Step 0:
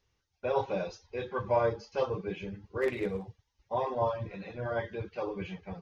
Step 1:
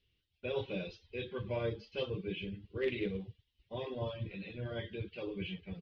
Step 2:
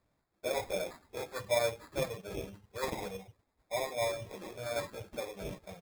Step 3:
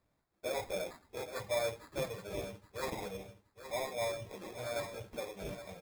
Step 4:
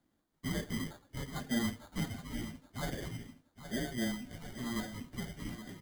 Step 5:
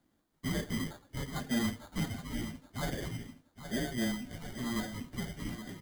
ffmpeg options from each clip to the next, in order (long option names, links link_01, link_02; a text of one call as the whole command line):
ffmpeg -i in.wav -af "firequalizer=gain_entry='entry(330,0);entry(820,-17);entry(3000,9);entry(6800,-20)':delay=0.05:min_phase=1,volume=-1.5dB" out.wav
ffmpeg -i in.wav -af "lowshelf=frequency=470:width_type=q:width=3:gain=-11.5,acrusher=samples=15:mix=1:aa=0.000001,volume=5dB" out.wav
ffmpeg -i in.wav -af "asoftclip=type=tanh:threshold=-26dB,aecho=1:1:820|1640|2460:0.266|0.0665|0.0166,volume=-1.5dB" out.wav
ffmpeg -i in.wav -af "afreqshift=-360,volume=1dB" out.wav
ffmpeg -i in.wav -af "asoftclip=type=tanh:threshold=-25.5dB,volume=3dB" out.wav